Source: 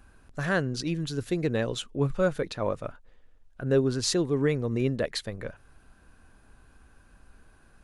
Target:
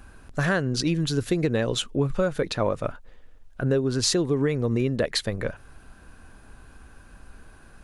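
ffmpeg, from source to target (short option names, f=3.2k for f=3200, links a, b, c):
-af "acompressor=threshold=-27dB:ratio=12,volume=8dB"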